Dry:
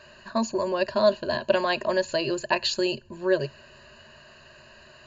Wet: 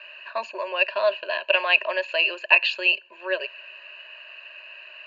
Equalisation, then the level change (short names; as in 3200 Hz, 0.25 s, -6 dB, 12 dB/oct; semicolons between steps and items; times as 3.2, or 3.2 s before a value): HPF 520 Hz 24 dB/oct; synth low-pass 2600 Hz, resonance Q 9.2; notch 780 Hz, Q 13; -1.0 dB